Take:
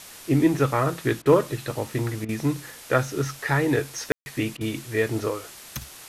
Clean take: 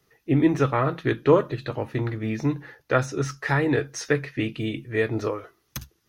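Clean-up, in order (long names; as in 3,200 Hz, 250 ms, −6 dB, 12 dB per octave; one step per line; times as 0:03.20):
clipped peaks rebuilt −8 dBFS
ambience match 0:04.12–0:04.26
repair the gap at 0:01.22/0:02.25/0:04.57, 37 ms
broadband denoise 19 dB, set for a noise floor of −44 dBFS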